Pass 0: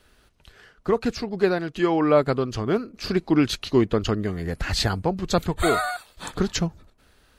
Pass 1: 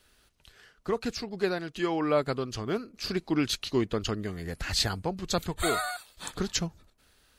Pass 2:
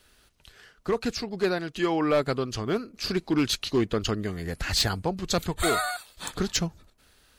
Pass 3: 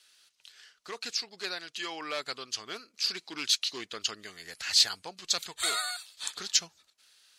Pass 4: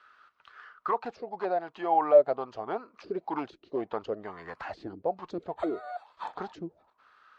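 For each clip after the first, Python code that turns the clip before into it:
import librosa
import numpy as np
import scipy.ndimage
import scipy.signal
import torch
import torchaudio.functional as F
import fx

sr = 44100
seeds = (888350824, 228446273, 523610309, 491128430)

y1 = fx.high_shelf(x, sr, hz=2500.0, db=8.5)
y1 = y1 * 10.0 ** (-8.0 / 20.0)
y2 = np.clip(y1, -10.0 ** (-20.5 / 20.0), 10.0 ** (-20.5 / 20.0))
y2 = y2 * 10.0 ** (3.5 / 20.0)
y3 = fx.bandpass_q(y2, sr, hz=5200.0, q=0.87)
y3 = y3 * 10.0 ** (3.5 / 20.0)
y4 = fx.envelope_lowpass(y3, sr, base_hz=320.0, top_hz=1300.0, q=6.2, full_db=-25.0, direction='down')
y4 = y4 * 10.0 ** (7.0 / 20.0)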